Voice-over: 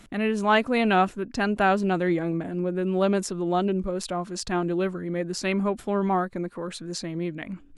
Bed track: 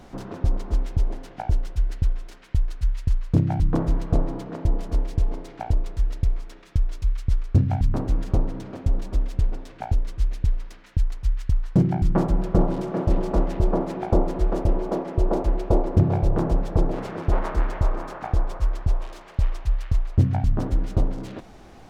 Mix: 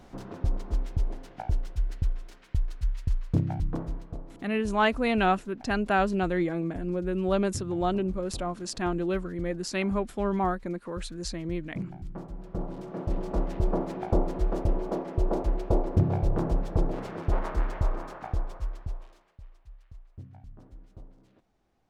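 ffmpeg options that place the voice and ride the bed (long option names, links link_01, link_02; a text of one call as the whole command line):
ffmpeg -i stem1.wav -i stem2.wav -filter_complex "[0:a]adelay=4300,volume=-3dB[link_01];[1:a]volume=8.5dB,afade=type=out:start_time=3.33:duration=0.85:silence=0.211349,afade=type=in:start_time=12.36:duration=1.36:silence=0.199526,afade=type=out:start_time=17.95:duration=1.43:silence=0.0841395[link_02];[link_01][link_02]amix=inputs=2:normalize=0" out.wav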